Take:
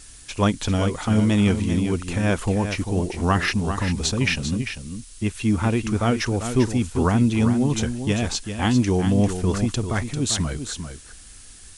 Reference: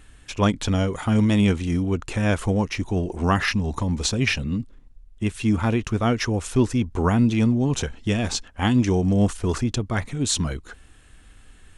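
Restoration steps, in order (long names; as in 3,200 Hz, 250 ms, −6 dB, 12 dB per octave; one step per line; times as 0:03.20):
noise reduction from a noise print 6 dB
echo removal 395 ms −8.5 dB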